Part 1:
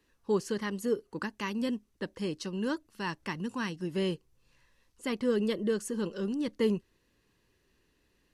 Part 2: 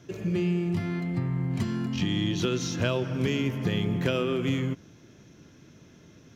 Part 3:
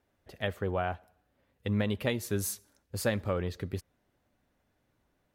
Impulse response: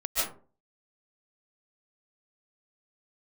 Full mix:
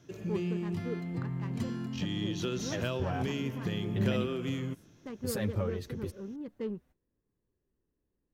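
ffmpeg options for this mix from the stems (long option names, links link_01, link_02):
-filter_complex "[0:a]bandreject=frequency=950:width=24,adynamicsmooth=sensitivity=1.5:basefreq=800,volume=-8.5dB,asplit=2[link_01][link_02];[1:a]equalizer=frequency=2200:width=5.9:gain=-3,volume=-7dB[link_03];[2:a]lowshelf=frequency=290:gain=6.5,alimiter=limit=-23.5dB:level=0:latency=1:release=81,asplit=2[link_04][link_05];[link_05]adelay=6.8,afreqshift=1.2[link_06];[link_04][link_06]amix=inputs=2:normalize=1,adelay=2300,volume=1dB[link_07];[link_02]apad=whole_len=337266[link_08];[link_07][link_08]sidechaingate=range=-34dB:threshold=-58dB:ratio=16:detection=peak[link_09];[link_01][link_03][link_09]amix=inputs=3:normalize=0,highshelf=frequency=8400:gain=4"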